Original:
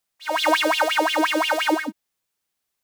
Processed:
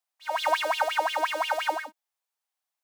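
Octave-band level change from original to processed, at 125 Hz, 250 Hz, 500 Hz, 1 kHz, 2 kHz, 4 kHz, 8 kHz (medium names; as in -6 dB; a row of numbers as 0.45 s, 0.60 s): no reading, -22.5 dB, -7.0 dB, -4.0 dB, -7.5 dB, -8.5 dB, -9.0 dB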